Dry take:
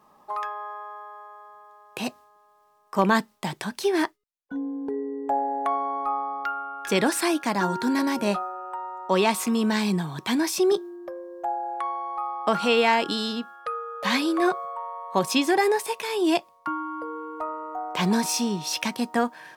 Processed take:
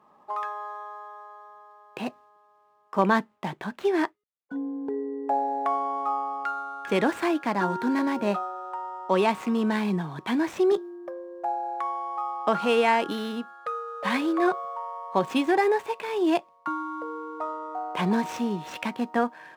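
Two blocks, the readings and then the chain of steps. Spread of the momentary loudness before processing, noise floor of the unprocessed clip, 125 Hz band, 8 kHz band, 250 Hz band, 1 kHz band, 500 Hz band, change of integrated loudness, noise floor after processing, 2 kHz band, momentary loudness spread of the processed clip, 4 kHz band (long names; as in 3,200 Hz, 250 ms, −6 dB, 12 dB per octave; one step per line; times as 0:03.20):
13 LU, −60 dBFS, −2.0 dB, −15.0 dB, −1.5 dB, −0.5 dB, −0.5 dB, −1.5 dB, −61 dBFS, −2.5 dB, 12 LU, −8.0 dB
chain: running median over 9 samples
high-pass filter 150 Hz 6 dB per octave
high-shelf EQ 4,900 Hz −10 dB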